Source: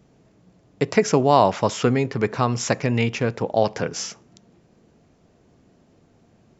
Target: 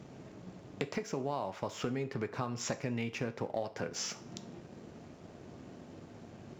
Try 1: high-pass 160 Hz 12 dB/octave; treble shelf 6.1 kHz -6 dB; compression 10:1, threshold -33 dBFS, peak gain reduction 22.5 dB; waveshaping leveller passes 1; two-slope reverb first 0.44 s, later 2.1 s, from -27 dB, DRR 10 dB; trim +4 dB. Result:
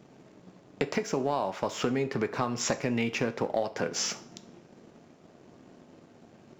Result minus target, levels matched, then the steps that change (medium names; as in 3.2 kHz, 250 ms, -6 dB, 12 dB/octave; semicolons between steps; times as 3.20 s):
compression: peak gain reduction -7 dB; 125 Hz band -4.5 dB
change: high-pass 76 Hz 12 dB/octave; change: compression 10:1, threshold -41 dBFS, peak gain reduction 29.5 dB